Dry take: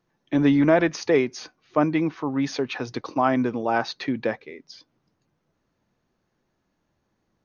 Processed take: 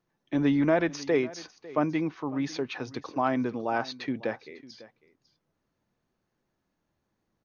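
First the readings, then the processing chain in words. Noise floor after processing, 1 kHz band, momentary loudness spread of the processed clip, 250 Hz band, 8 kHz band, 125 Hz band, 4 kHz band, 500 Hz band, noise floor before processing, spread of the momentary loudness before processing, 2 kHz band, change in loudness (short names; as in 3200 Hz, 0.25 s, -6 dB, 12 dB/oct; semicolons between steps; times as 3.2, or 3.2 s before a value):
-80 dBFS, -5.5 dB, 12 LU, -5.5 dB, n/a, -5.5 dB, -5.5 dB, -5.5 dB, -75 dBFS, 12 LU, -5.5 dB, -5.5 dB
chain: echo 0.55 s -19 dB; gain -5.5 dB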